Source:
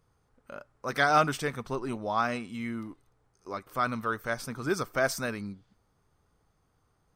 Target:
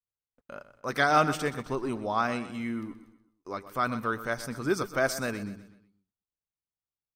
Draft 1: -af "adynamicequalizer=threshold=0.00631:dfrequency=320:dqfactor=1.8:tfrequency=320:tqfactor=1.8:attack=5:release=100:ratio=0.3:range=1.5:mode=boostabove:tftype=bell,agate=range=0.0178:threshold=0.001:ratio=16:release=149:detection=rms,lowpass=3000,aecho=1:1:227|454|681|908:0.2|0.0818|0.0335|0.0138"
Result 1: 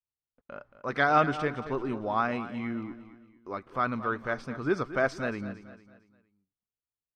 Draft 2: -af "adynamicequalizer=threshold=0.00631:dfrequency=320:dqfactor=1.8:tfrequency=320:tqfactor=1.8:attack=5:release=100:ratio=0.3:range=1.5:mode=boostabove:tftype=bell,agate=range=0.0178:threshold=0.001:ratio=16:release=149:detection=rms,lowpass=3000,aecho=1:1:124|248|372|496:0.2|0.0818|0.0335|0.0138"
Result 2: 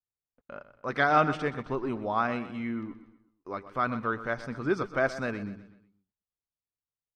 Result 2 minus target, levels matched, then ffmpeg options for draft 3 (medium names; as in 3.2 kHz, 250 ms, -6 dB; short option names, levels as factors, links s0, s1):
4 kHz band -5.5 dB
-af "adynamicequalizer=threshold=0.00631:dfrequency=320:dqfactor=1.8:tfrequency=320:tqfactor=1.8:attack=5:release=100:ratio=0.3:range=1.5:mode=boostabove:tftype=bell,agate=range=0.0178:threshold=0.001:ratio=16:release=149:detection=rms,aecho=1:1:124|248|372|496:0.2|0.0818|0.0335|0.0138"